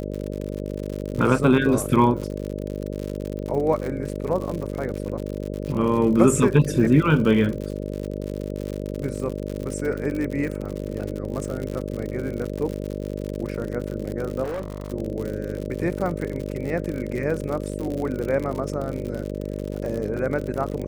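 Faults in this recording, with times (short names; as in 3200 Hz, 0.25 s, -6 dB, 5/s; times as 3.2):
buzz 50 Hz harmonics 12 -30 dBFS
crackle 78/s -28 dBFS
14.43–14.92 clipped -25.5 dBFS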